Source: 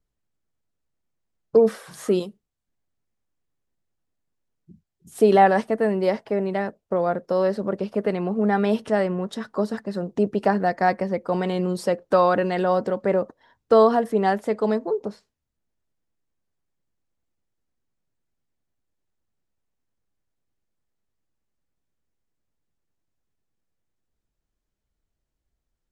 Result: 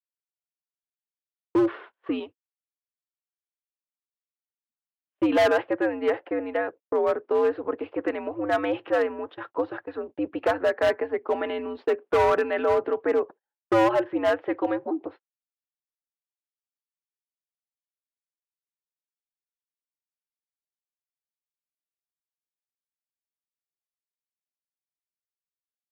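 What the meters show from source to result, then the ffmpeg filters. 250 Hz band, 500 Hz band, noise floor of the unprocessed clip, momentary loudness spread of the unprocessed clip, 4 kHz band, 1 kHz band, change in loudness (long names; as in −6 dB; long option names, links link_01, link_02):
−3.5 dB, −3.0 dB, −82 dBFS, 10 LU, −0.5 dB, −5.5 dB, −3.5 dB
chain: -af "highpass=frequency=490:width_type=q:width=0.5412,highpass=frequency=490:width_type=q:width=1.307,lowpass=frequency=3100:width_type=q:width=0.5176,lowpass=frequency=3100:width_type=q:width=0.7071,lowpass=frequency=3100:width_type=q:width=1.932,afreqshift=-110,agate=range=-38dB:threshold=-42dB:ratio=16:detection=peak,volume=18dB,asoftclip=hard,volume=-18dB,volume=1.5dB"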